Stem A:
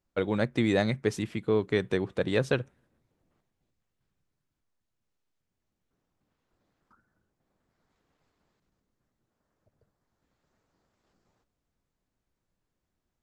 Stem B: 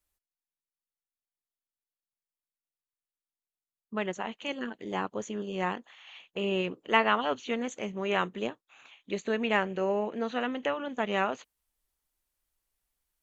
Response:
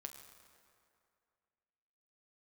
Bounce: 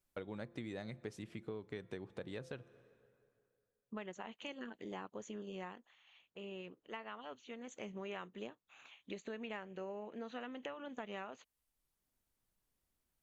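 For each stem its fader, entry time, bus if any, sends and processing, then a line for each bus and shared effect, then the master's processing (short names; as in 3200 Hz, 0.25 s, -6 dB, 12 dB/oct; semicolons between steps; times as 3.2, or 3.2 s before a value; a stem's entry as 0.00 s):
-7.5 dB, 0.00 s, send -13.5 dB, de-hum 171.7 Hz, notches 8; auto duck -16 dB, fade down 1.80 s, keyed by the second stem
5.48 s -4.5 dB -> 6.03 s -16.5 dB -> 7.62 s -16.5 dB -> 7.87 s -5 dB, 0.00 s, no send, dry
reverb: on, RT60 2.4 s, pre-delay 7 ms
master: compressor 5:1, threshold -43 dBFS, peak gain reduction 15.5 dB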